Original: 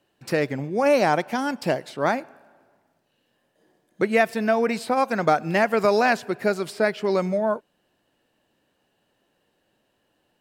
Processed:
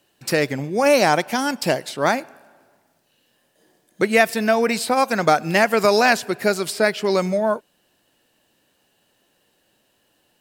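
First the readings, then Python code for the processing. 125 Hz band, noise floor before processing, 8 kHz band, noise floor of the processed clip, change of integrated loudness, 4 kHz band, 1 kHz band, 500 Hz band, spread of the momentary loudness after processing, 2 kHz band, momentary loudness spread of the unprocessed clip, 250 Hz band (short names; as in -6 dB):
+2.5 dB, -71 dBFS, +11.5 dB, -66 dBFS, +3.5 dB, +9.0 dB, +3.0 dB, +3.0 dB, 7 LU, +5.0 dB, 7 LU, +2.5 dB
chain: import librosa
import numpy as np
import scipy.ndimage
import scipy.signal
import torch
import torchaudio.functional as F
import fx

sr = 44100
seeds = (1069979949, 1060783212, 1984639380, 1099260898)

y = fx.high_shelf(x, sr, hz=3300.0, db=11.0)
y = F.gain(torch.from_numpy(y), 2.5).numpy()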